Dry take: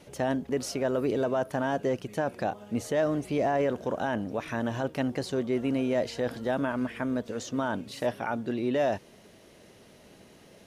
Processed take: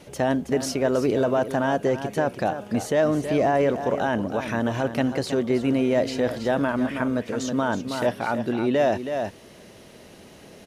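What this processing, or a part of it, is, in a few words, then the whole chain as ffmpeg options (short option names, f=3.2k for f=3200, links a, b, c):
ducked delay: -filter_complex "[0:a]asplit=3[a][b][c];[b]adelay=322,volume=-3dB[d];[c]apad=whole_len=484557[e];[d][e]sidechaincompress=threshold=-32dB:ratio=8:attack=16:release=544[f];[a][f]amix=inputs=2:normalize=0,volume=5.5dB"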